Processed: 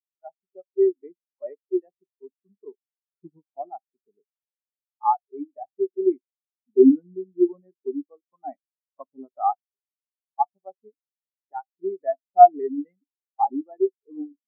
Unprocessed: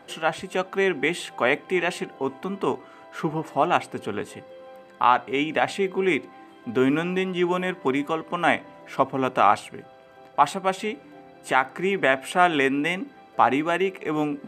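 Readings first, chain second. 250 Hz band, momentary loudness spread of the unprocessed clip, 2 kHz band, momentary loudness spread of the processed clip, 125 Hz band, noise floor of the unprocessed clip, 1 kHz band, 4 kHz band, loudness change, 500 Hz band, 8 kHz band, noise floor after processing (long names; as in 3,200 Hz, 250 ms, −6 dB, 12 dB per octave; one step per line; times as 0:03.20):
0.0 dB, 12 LU, below −30 dB, 22 LU, below −25 dB, −49 dBFS, 0.0 dB, below −40 dB, +1.5 dB, +0.5 dB, below −40 dB, below −85 dBFS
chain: in parallel at −10 dB: bit reduction 4 bits
on the sum: high-shelf EQ 2,600 Hz −11.5 dB
every bin expanded away from the loudest bin 4 to 1
level +2.5 dB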